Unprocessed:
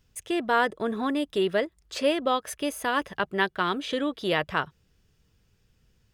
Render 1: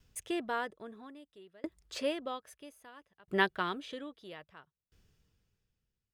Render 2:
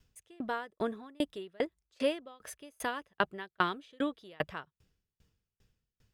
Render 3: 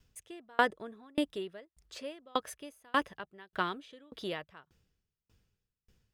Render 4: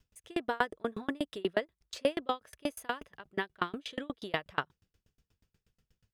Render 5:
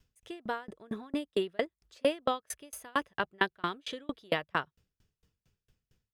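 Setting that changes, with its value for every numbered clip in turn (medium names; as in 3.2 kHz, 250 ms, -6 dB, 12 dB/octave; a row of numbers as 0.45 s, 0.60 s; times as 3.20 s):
sawtooth tremolo in dB, rate: 0.61 Hz, 2.5 Hz, 1.7 Hz, 8.3 Hz, 4.4 Hz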